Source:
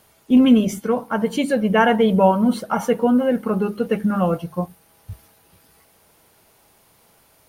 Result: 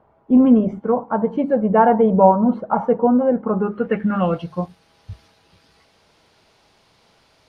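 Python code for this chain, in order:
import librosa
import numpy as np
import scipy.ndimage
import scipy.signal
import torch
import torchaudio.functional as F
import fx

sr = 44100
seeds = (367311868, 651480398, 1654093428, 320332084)

y = fx.filter_sweep_lowpass(x, sr, from_hz=910.0, to_hz=4600.0, start_s=3.46, end_s=4.51, q=1.6)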